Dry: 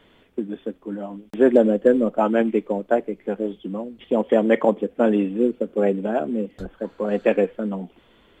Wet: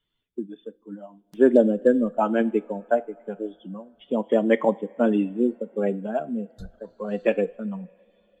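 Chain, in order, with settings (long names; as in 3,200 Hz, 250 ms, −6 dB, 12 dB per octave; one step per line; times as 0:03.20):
spectral dynamics exaggerated over time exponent 1.5
coupled-rooms reverb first 0.3 s, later 3.9 s, from −21 dB, DRR 15 dB
noise reduction from a noise print of the clip's start 7 dB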